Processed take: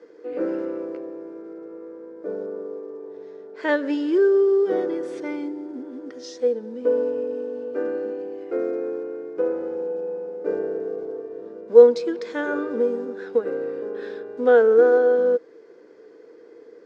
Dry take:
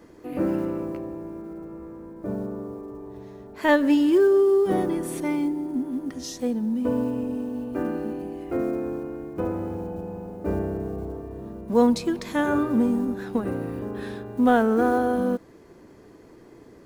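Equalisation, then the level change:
loudspeaker in its box 300–6,700 Hz, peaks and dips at 320 Hz +5 dB, 480 Hz +8 dB, 1,500 Hz +9 dB, 2,100 Hz +4 dB, 3,500 Hz +3 dB, 5,000 Hz +5 dB
parametric band 460 Hz +11.5 dB 0.4 octaves
−7.0 dB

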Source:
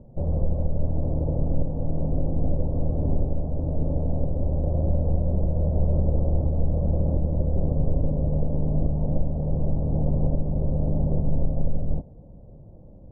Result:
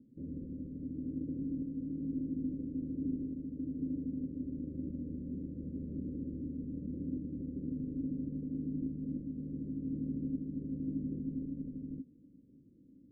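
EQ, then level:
formant filter i
Butterworth band-reject 780 Hz, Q 1
+2.0 dB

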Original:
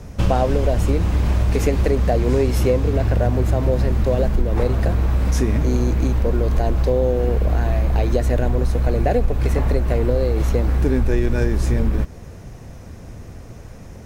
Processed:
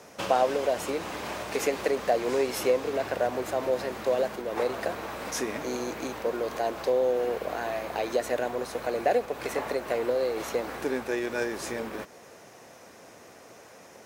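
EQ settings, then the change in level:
high-pass filter 490 Hz 12 dB per octave
−1.5 dB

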